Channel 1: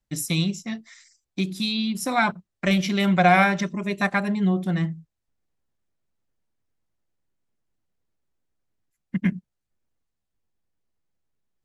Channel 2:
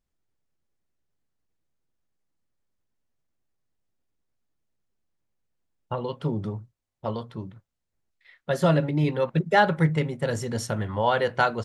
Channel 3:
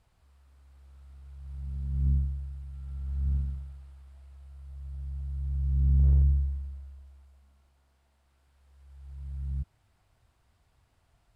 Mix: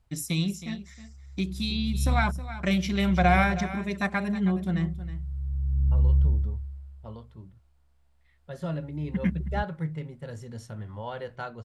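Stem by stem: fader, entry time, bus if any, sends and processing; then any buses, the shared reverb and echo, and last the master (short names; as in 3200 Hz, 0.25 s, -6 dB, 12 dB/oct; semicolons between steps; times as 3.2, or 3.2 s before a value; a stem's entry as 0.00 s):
-5.5 dB, 0.00 s, no send, echo send -14 dB, dry
-17.0 dB, 0.00 s, no send, no echo send, harmonic-percussive split harmonic +5 dB
-5.5 dB, 0.00 s, no send, no echo send, dry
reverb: off
echo: echo 0.318 s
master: low shelf 87 Hz +11 dB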